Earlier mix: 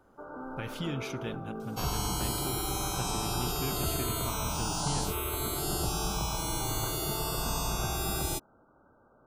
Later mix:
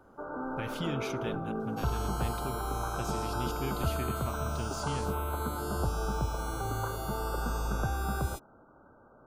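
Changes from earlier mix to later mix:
first sound +4.5 dB
second sound −11.5 dB

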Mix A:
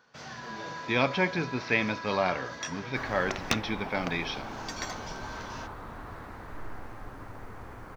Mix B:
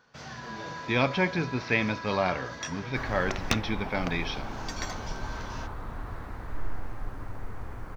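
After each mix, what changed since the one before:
master: add low-shelf EQ 96 Hz +11.5 dB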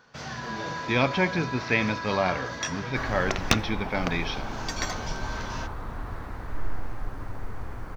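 first sound +4.5 dB
reverb: on, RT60 0.45 s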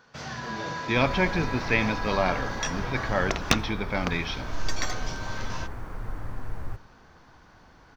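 second sound: entry −2.00 s

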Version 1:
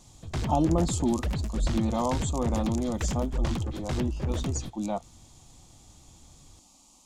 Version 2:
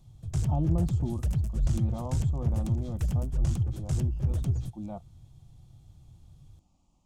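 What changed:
speech: add high-frequency loss of the air 360 metres
master: add octave-band graphic EQ 125/250/500/1,000/2,000/4,000/8,000 Hz +9/−10/−6/−9/−10/−10/+6 dB

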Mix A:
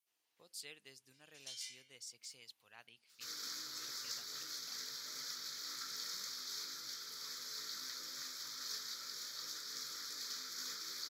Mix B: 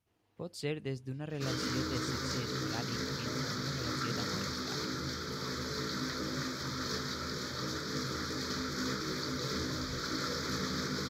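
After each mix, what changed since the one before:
first sound −5.0 dB
second sound: entry −1.80 s
master: remove first difference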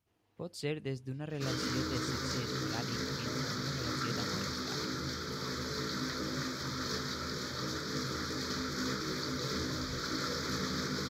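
nothing changed

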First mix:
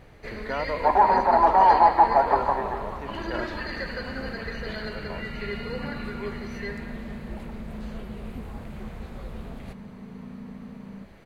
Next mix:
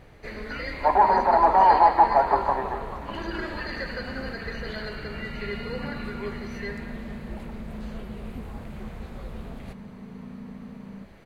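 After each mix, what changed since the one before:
speech: add pair of resonant band-passes 670 Hz, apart 2.3 octaves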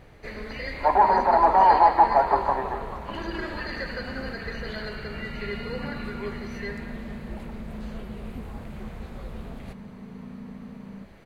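speech: muted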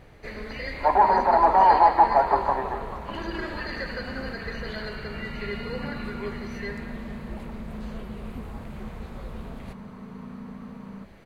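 second sound: add parametric band 1,300 Hz +7.5 dB 1.9 octaves

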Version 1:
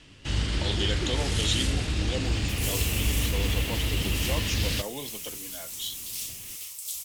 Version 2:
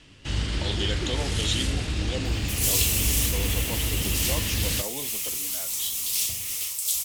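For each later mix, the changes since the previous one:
second sound +9.0 dB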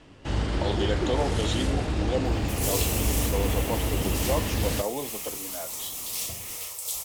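master: add drawn EQ curve 120 Hz 0 dB, 770 Hz +9 dB, 2,900 Hz −6 dB

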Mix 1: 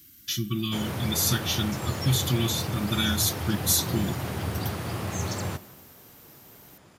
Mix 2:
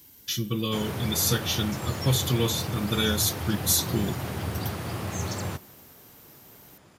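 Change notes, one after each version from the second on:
speech: remove linear-phase brick-wall band-stop 390–1,100 Hz
background: send −7.0 dB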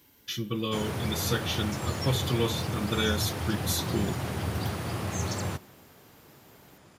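speech: add bass and treble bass −5 dB, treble −10 dB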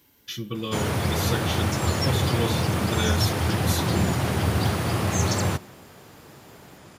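background +8.0 dB

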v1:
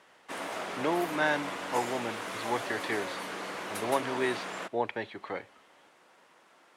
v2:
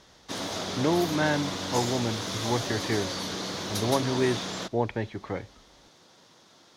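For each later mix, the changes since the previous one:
background: add flat-topped bell 4,700 Hz +14 dB 1.2 octaves
master: remove meter weighting curve A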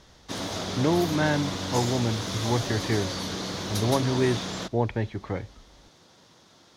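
master: add low-shelf EQ 120 Hz +10.5 dB

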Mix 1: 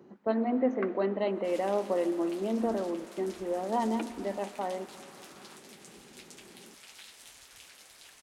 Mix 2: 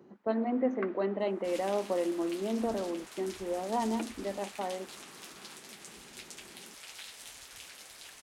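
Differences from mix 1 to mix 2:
second sound +4.0 dB
reverb: off

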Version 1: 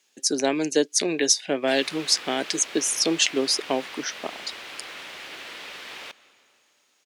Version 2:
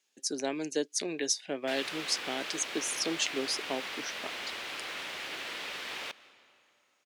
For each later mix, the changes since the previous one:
speech −10.0 dB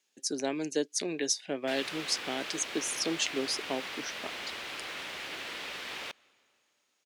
background: send −9.0 dB
master: add low-shelf EQ 200 Hz +5 dB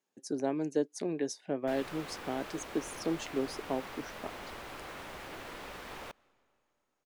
speech: add high-shelf EQ 4,800 Hz −8.5 dB
master: remove meter weighting curve D

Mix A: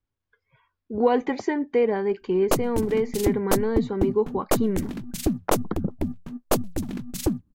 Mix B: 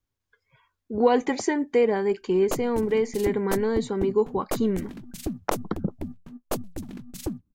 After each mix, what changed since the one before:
speech: remove high-frequency loss of the air 170 metres
background −7.0 dB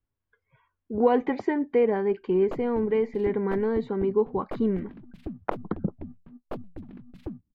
background −5.0 dB
master: add high-frequency loss of the air 450 metres

